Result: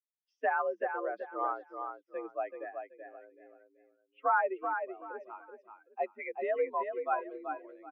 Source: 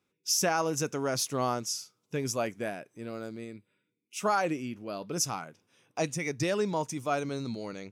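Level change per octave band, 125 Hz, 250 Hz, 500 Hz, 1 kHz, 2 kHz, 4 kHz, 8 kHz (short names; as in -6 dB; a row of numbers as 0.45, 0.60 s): under -40 dB, -14.5 dB, -2.5 dB, +0.5 dB, -0.5 dB, under -30 dB, under -40 dB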